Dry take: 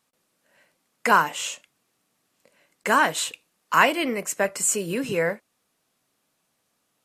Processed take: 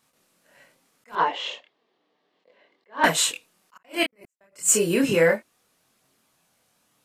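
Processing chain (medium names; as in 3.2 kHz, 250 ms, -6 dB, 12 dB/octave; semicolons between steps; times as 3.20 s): 3.73–4.61 s: trance gate "x..xx...xx." 160 bpm -60 dB; chorus voices 2, 0.33 Hz, delay 26 ms, depth 3.8 ms; saturation -13 dBFS, distortion -17 dB; 1.15–3.04 s: cabinet simulation 320–3600 Hz, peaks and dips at 410 Hz +6 dB, 1.4 kHz -10 dB, 2.5 kHz -8 dB; attacks held to a fixed rise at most 280 dB/s; trim +8.5 dB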